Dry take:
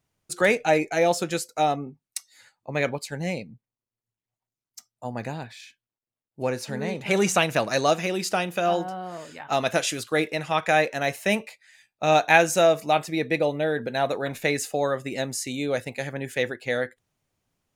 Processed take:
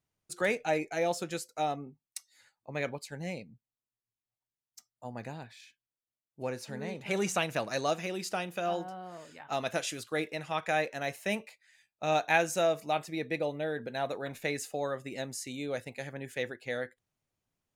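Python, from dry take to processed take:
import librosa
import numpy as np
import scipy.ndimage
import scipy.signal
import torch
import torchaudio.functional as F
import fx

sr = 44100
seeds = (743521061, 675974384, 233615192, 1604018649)

y = F.gain(torch.from_numpy(x), -9.0).numpy()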